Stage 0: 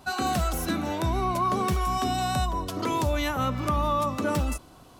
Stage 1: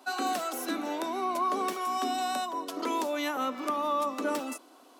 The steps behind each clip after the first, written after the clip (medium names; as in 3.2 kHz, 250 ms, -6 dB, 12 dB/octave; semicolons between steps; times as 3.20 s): elliptic high-pass 260 Hz, stop band 60 dB; trim -2.5 dB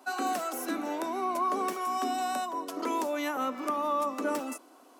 peaking EQ 3.7 kHz -6 dB 0.81 oct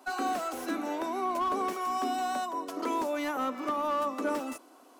slew-rate limiter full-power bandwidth 49 Hz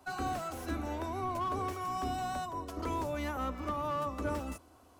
octave divider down 2 oct, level +2 dB; trim -5 dB